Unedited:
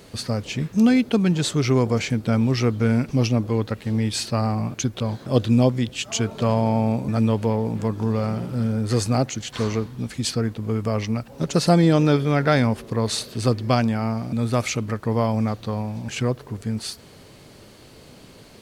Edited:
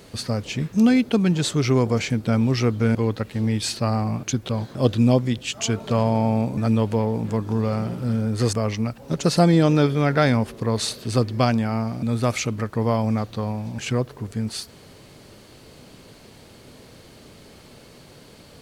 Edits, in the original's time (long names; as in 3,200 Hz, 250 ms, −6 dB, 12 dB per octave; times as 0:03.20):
0:02.95–0:03.46: remove
0:09.04–0:10.83: remove